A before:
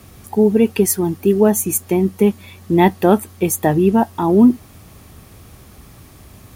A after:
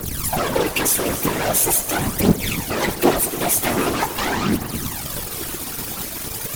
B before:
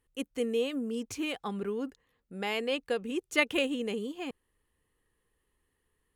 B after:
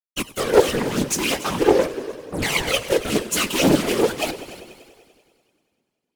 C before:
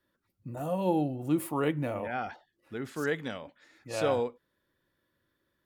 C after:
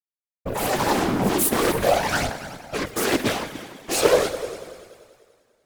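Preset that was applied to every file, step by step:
high-shelf EQ 9,300 Hz +10.5 dB
in parallel at 0 dB: downward compressor, threshold −20 dBFS
on the sum: fuzz pedal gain 34 dB, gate −33 dBFS
bass and treble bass −1 dB, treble +3 dB
coupled-rooms reverb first 0.45 s, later 2.8 s, from −14 dB, DRR 16 dB
phase shifter 0.43 Hz, delay 4.4 ms, feedback 77%
on a send: echo machine with several playback heads 97 ms, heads all three, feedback 47%, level −18 dB
on the sum: random phases in short frames
highs frequency-modulated by the lows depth 0.6 ms
level −7.5 dB

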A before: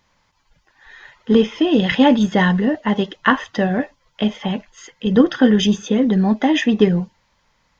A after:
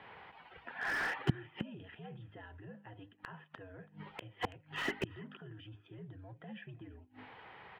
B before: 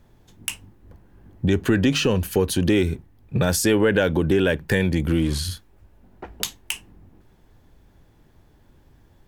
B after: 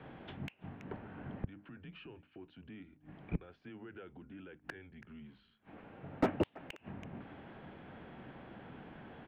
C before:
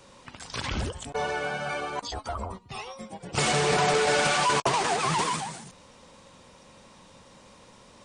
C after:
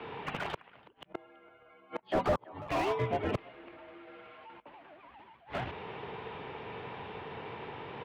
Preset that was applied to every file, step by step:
mains-hum notches 50/100/150/200/250/300/350/400 Hz
brickwall limiter −13 dBFS
gate with flip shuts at −23 dBFS, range −39 dB
single-sideband voice off tune −97 Hz 220–3,100 Hz
far-end echo of a speakerphone 330 ms, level −23 dB
slew-rate limiting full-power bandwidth 9.8 Hz
level +11.5 dB

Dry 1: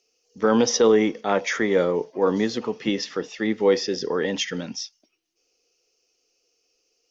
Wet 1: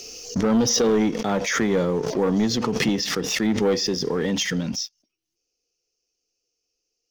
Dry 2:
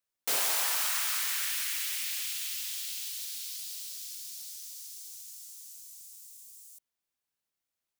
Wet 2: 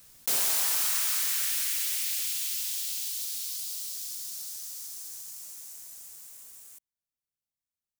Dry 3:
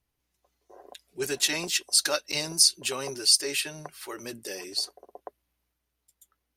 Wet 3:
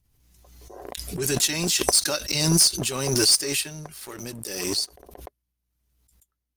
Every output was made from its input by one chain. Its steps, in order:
bass and treble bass +13 dB, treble +7 dB
leveller curve on the samples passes 2
background raised ahead of every attack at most 36 dB per second
level −9.5 dB

